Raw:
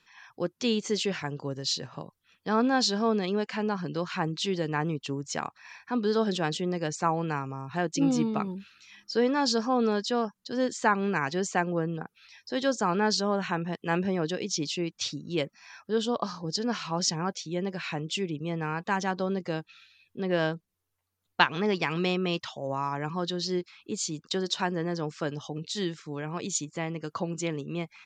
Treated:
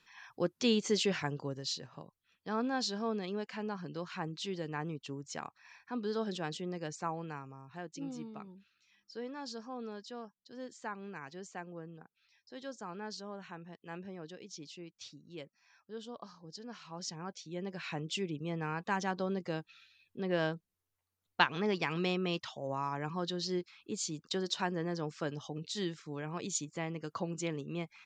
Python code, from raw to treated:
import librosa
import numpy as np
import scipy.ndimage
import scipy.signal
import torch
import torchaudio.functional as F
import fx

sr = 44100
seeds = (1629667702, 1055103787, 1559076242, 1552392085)

y = fx.gain(x, sr, db=fx.line((1.26, -2.0), (1.82, -9.5), (6.89, -9.5), (8.13, -17.5), (16.7, -17.5), (18.0, -5.5)))